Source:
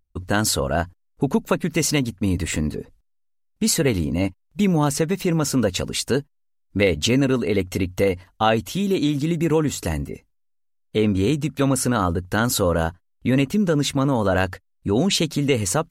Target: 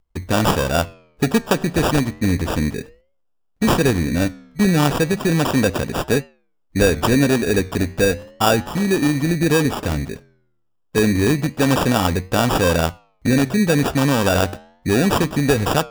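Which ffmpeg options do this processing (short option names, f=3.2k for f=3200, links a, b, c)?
-af "highshelf=f=12k:g=9,acrusher=samples=21:mix=1:aa=0.000001,flanger=delay=6.2:depth=8.5:regen=-90:speed=0.32:shape=triangular,volume=7.5dB"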